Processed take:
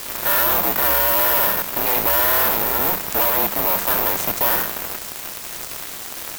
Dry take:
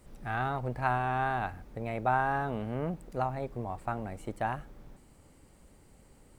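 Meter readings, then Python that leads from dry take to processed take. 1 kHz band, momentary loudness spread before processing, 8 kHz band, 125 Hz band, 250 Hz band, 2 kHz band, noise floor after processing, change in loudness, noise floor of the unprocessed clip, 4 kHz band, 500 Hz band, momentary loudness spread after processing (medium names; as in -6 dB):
+8.0 dB, 9 LU, no reading, -1.5 dB, +6.5 dB, +12.5 dB, -32 dBFS, +16.5 dB, -59 dBFS, +27.5 dB, +11.5 dB, 14 LU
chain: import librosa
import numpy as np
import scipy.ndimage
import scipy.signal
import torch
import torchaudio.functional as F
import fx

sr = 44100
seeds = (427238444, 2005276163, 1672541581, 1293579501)

y = fx.bin_compress(x, sr, power=0.6)
y = fx.highpass(y, sr, hz=1000.0, slope=6)
y = fx.high_shelf(y, sr, hz=8000.0, db=6.5)
y = fx.fuzz(y, sr, gain_db=43.0, gate_db=-49.0)
y = fx.cheby_harmonics(y, sr, harmonics=(4,), levels_db=(-14,), full_scale_db=-11.0)
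y = fx.quant_dither(y, sr, seeds[0], bits=6, dither='triangular')
y = 10.0 ** (-16.5 / 20.0) * np.tanh(y / 10.0 ** (-16.5 / 20.0))
y = (np.kron(y[::3], np.eye(3)[0]) * 3)[:len(y)]
y = y * np.sin(2.0 * np.pi * 190.0 * np.arange(len(y)) / sr)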